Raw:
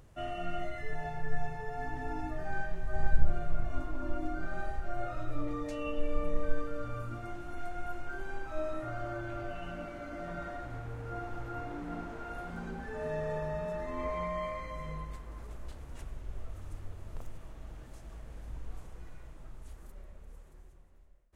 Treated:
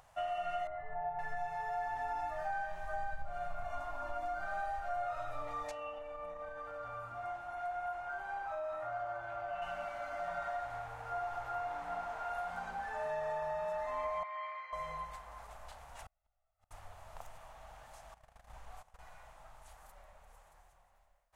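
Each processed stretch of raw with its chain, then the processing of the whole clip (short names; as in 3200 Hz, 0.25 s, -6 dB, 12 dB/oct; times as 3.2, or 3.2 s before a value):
0.67–1.19 LPF 1000 Hz + notch 530 Hz, Q 5.7
5.71–9.62 HPF 54 Hz 6 dB/oct + high shelf 2800 Hz -10 dB + compressor 5:1, threshold -37 dBFS
14.23–14.73 HPF 1400 Hz + air absorption 280 m
16.04–16.71 comb 1.5 ms, depth 67% + flipped gate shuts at -31 dBFS, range -38 dB
18.14–18.99 notch 940 Hz, Q 23 + gate -43 dBFS, range -16 dB
whole clip: resonant low shelf 510 Hz -13.5 dB, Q 3; compressor, threshold -35 dBFS; gain +1 dB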